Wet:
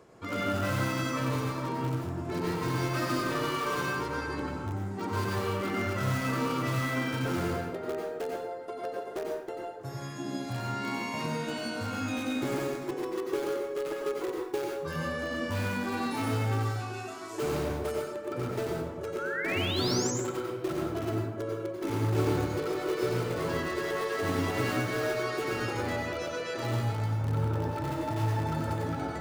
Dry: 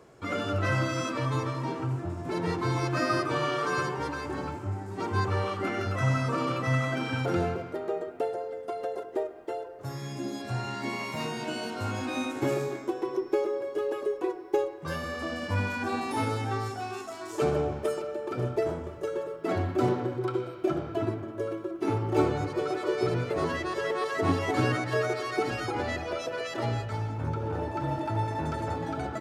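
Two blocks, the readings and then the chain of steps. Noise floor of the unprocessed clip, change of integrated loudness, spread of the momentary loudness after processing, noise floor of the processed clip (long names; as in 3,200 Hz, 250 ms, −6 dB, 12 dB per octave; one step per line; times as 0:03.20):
−42 dBFS, −1.0 dB, 6 LU, −39 dBFS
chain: reversed playback
upward compression, threshold −40 dBFS
reversed playback
dynamic equaliser 730 Hz, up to −5 dB, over −46 dBFS, Q 4.3
in parallel at −9 dB: wrap-around overflow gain 24 dB
on the sum: sound drawn into the spectrogram rise, 0:19.18–0:20.11, 1,300–7,800 Hz −31 dBFS
dense smooth reverb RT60 0.63 s, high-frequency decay 0.75×, pre-delay 80 ms, DRR −0.5 dB
level −6 dB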